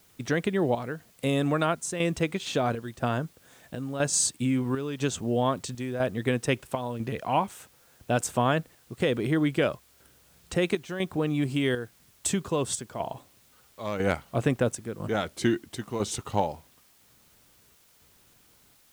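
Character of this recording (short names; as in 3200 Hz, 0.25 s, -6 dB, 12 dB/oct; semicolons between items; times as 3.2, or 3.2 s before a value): chopped level 1 Hz, depth 60%, duty 75%; a quantiser's noise floor 10-bit, dither triangular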